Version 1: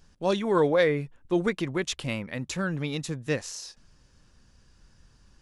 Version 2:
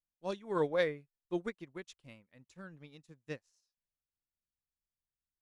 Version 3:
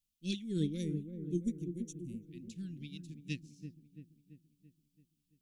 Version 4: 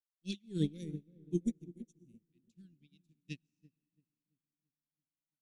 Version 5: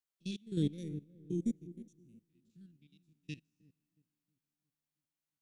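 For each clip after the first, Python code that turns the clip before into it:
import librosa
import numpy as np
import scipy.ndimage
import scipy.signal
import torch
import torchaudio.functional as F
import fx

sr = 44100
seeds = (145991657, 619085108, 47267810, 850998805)

y1 = fx.upward_expand(x, sr, threshold_db=-43.0, expansion=2.5)
y1 = y1 * 10.0 ** (-7.0 / 20.0)
y2 = scipy.signal.sosfilt(scipy.signal.cheby1(3, 1.0, [270.0, 2800.0], 'bandstop', fs=sr, output='sos'), y1)
y2 = fx.spec_box(y2, sr, start_s=0.77, length_s=1.49, low_hz=680.0, high_hz=5600.0, gain_db=-19)
y2 = fx.echo_wet_lowpass(y2, sr, ms=336, feedback_pct=54, hz=1000.0, wet_db=-7.0)
y2 = y2 * 10.0 ** (9.5 / 20.0)
y3 = fx.rev_freeverb(y2, sr, rt60_s=3.7, hf_ratio=0.55, predelay_ms=55, drr_db=16.5)
y3 = fx.upward_expand(y3, sr, threshold_db=-50.0, expansion=2.5)
y3 = y3 * 10.0 ** (3.0 / 20.0)
y4 = fx.spec_steps(y3, sr, hold_ms=50)
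y4 = y4 * 10.0 ** (2.0 / 20.0)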